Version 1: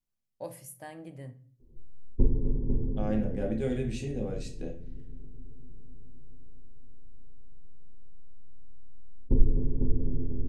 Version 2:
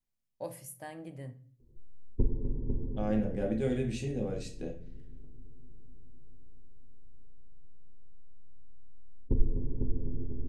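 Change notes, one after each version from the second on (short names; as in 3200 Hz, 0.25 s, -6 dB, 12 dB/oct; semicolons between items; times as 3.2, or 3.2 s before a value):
background: send -8.0 dB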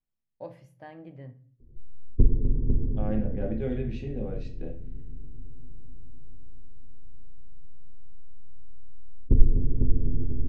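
background: add low shelf 320 Hz +9.5 dB; master: add air absorption 260 m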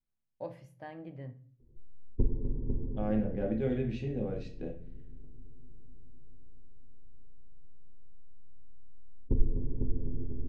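background: add low shelf 320 Hz -9.5 dB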